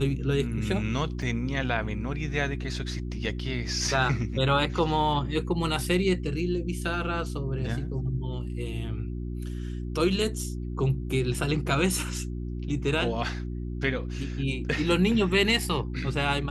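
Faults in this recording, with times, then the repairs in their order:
hum 60 Hz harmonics 6 -33 dBFS
1.22 gap 2.9 ms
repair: de-hum 60 Hz, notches 6; interpolate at 1.22, 2.9 ms

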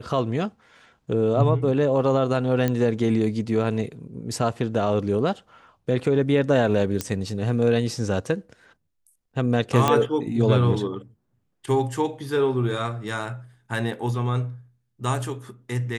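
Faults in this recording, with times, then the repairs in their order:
2.68 pop -11 dBFS
7.01 pop -9 dBFS
9.88 pop -6 dBFS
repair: de-click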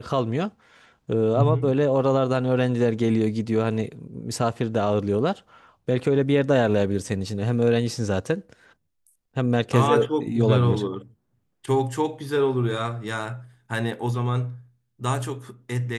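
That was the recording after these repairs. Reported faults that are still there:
none

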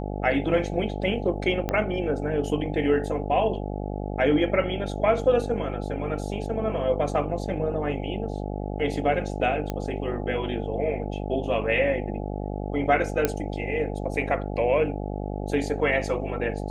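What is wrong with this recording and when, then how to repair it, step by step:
buzz 50 Hz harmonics 17 -31 dBFS
1.69 pop -12 dBFS
9.7 pop -15 dBFS
13.25 pop -7 dBFS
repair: de-click; de-hum 50 Hz, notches 17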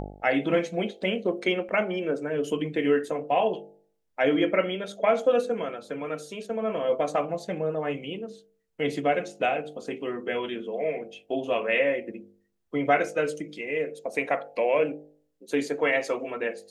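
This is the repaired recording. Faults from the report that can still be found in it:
1.69 pop

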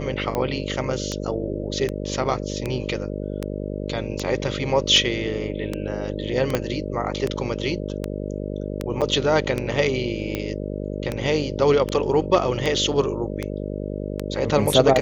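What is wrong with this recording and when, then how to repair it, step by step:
buzz 50 Hz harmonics 12 -29 dBFS
tick 78 rpm -11 dBFS
6.55 pop -7 dBFS
9.01–9.02 gap 7.1 ms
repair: de-click; de-hum 50 Hz, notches 12; interpolate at 9.01, 7.1 ms

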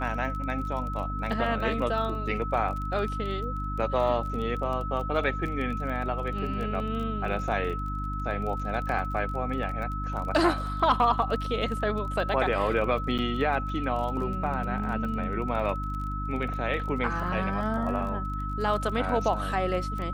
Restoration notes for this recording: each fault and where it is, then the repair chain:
crackle 25/s -34 dBFS
hum 50 Hz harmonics 6 -33 dBFS
tone 1300 Hz -34 dBFS
8.89 gap 2 ms
13.18–13.19 gap 6.9 ms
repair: de-click; notch 1300 Hz, Q 30; de-hum 50 Hz, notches 6; interpolate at 8.89, 2 ms; interpolate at 13.18, 6.9 ms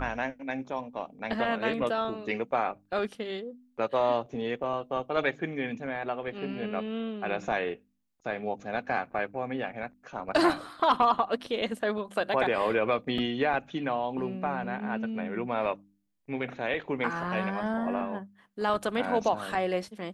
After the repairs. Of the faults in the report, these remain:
none

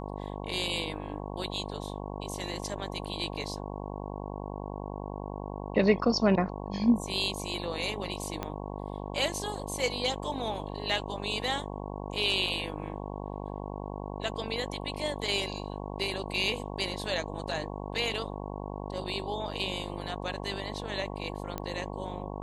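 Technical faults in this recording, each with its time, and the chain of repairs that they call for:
buzz 50 Hz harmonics 22 -38 dBFS
8.43 pop -18 dBFS
21.58 pop -19 dBFS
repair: de-click; de-hum 50 Hz, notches 22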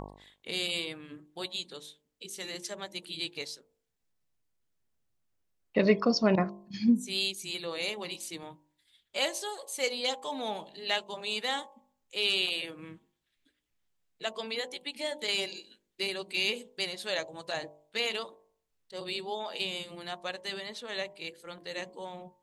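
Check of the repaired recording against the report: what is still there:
8.43 pop

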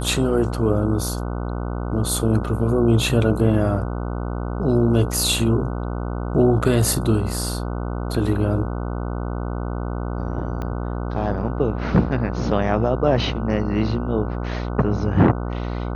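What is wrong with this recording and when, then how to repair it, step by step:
buzz 60 Hz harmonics 25 -26 dBFS
10.62 pop -17 dBFS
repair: de-click; de-hum 60 Hz, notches 25

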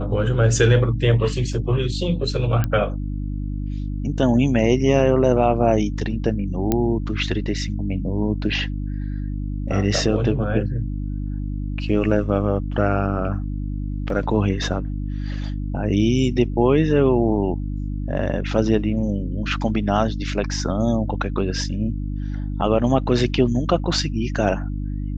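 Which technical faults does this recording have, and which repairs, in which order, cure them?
hum 50 Hz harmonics 6 -26 dBFS
1.53 gap 2.6 ms
2.64 pop -10 dBFS
6.72 pop -6 dBFS
14.1 gap 2.3 ms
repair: de-click; de-hum 50 Hz, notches 6; interpolate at 1.53, 2.6 ms; interpolate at 14.1, 2.3 ms

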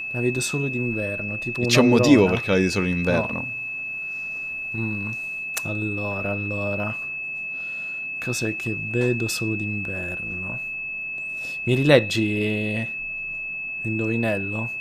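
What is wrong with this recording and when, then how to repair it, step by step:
tone 2600 Hz -28 dBFS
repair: notch 2600 Hz, Q 30

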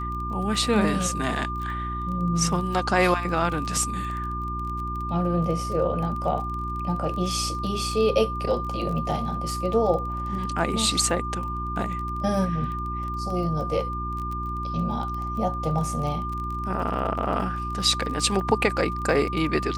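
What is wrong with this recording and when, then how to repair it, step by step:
crackle 25/s -31 dBFS
hum 60 Hz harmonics 6 -32 dBFS
tone 1200 Hz -30 dBFS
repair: de-click; de-hum 60 Hz, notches 6; notch 1200 Hz, Q 30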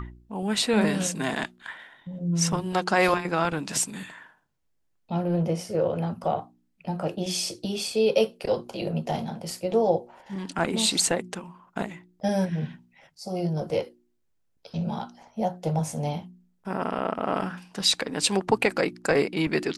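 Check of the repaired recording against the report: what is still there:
none

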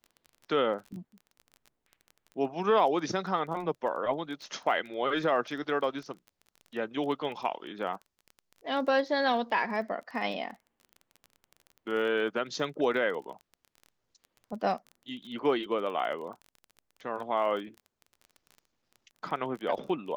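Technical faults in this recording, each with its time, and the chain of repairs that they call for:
crackle 25/s -39 dBFS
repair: de-click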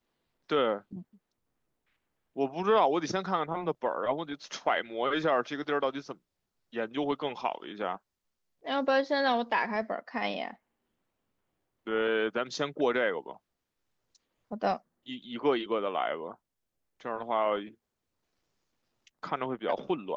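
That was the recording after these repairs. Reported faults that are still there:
none

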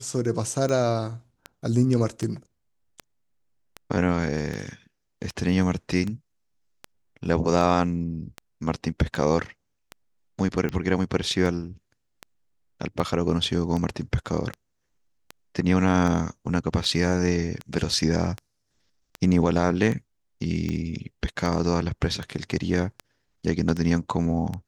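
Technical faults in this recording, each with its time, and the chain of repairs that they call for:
tick 78 rpm -18 dBFS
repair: de-click

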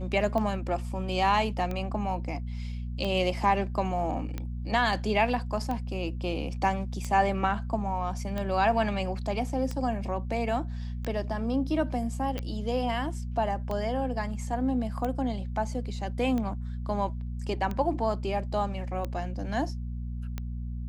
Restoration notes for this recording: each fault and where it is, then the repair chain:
hum 60 Hz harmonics 4 -34 dBFS
tick 45 rpm -20 dBFS
12.39 pop -20 dBFS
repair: de-click; de-hum 60 Hz, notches 4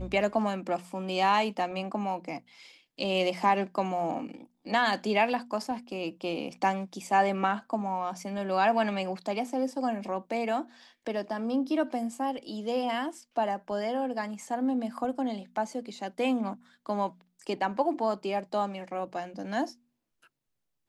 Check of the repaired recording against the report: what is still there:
none

